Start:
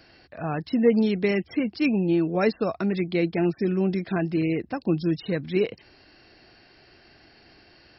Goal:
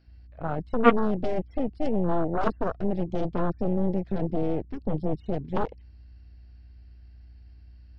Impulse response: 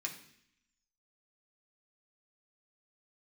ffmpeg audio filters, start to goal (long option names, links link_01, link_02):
-filter_complex "[0:a]acrossover=split=3300[link_01][link_02];[link_02]acompressor=threshold=-48dB:ratio=4:attack=1:release=60[link_03];[link_01][link_03]amix=inputs=2:normalize=0,aeval=exprs='0.376*(cos(1*acos(clip(val(0)/0.376,-1,1)))-cos(1*PI/2))+0.168*(cos(3*acos(clip(val(0)/0.376,-1,1)))-cos(3*PI/2))+0.0266*(cos(8*acos(clip(val(0)/0.376,-1,1)))-cos(8*PI/2))':channel_layout=same,acontrast=76,aeval=exprs='val(0)+0.00631*(sin(2*PI*60*n/s)+sin(2*PI*2*60*n/s)/2+sin(2*PI*3*60*n/s)/3+sin(2*PI*4*60*n/s)/4+sin(2*PI*5*60*n/s)/5)':channel_layout=same,afwtdn=0.0631"